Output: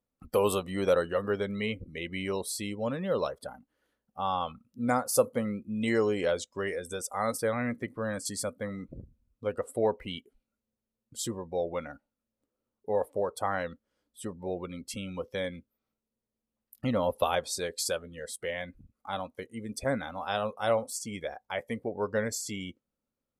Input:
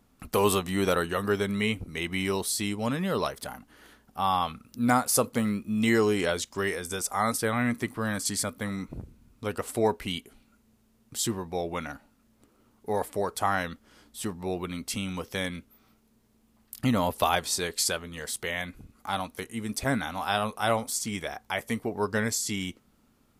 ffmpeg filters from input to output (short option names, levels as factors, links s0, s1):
-af "afftdn=nr=19:nf=-40,equalizer=f=530:w=4.2:g=11.5,volume=0.531"